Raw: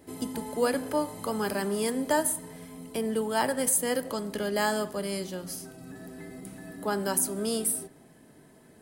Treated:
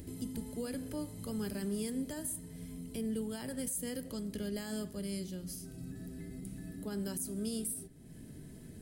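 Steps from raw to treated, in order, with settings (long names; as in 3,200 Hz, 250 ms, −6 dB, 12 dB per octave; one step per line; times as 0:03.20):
upward compression, threshold −34 dBFS
brickwall limiter −20.5 dBFS, peak gain reduction 9 dB
guitar amp tone stack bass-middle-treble 10-0-1
level +13 dB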